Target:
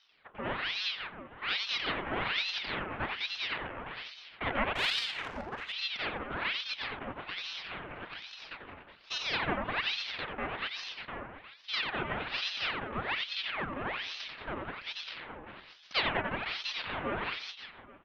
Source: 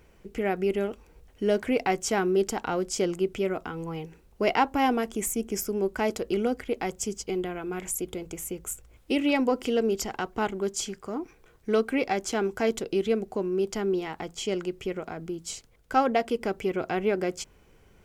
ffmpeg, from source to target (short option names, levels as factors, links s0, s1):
-filter_complex "[0:a]aeval=exprs='abs(val(0))':c=same,asuperstop=centerf=670:order=4:qfactor=5.8,aecho=1:1:90|207|359.1|556.8|813.9:0.631|0.398|0.251|0.158|0.1,highpass=f=170:t=q:w=0.5412,highpass=f=170:t=q:w=1.307,lowpass=f=2500:t=q:w=0.5176,lowpass=f=2500:t=q:w=0.7071,lowpass=f=2500:t=q:w=1.932,afreqshift=-62,asettb=1/sr,asplit=3[s0][s1][s2];[s0]atrim=end=4.754[s3];[s1]atrim=start=4.75:end=5.73,asetpts=PTS-STARTPTS,afade=t=in:d=0.004:c=qsin,afade=t=out:st=0.976:d=0.004:c=qsin,adynamicsmooth=sensitivity=7.5:basefreq=710[s4];[s2]atrim=start=5.726[s5];[s3][s4]acrossfade=d=0.004:c1=hsin:c2=qsin[s6];[s6][s5]acrossfade=d=0.004:c1=qsin:c2=hsin,asettb=1/sr,asplit=3[s7][s8][s9];[s7]atrim=end=14.774[s10];[s8]atrim=start=14.77:end=16.2,asetpts=PTS-STARTPTS,afade=t=in:d=0.004:c=qsin,afade=t=out:st=1.426:d=0.004:c=qsin,afreqshift=-35[s11];[s9]atrim=start=16.196[s12];[s10][s11]acrossfade=d=0.004:c1=hsin:c2=qsin[s13];[s13][s12]acrossfade=d=0.004:c1=qsin:c2=hsin,aeval=exprs='val(0)*sin(2*PI*1900*n/s+1900*0.8/1.2*sin(2*PI*1.2*n/s))':c=same,volume=0.891"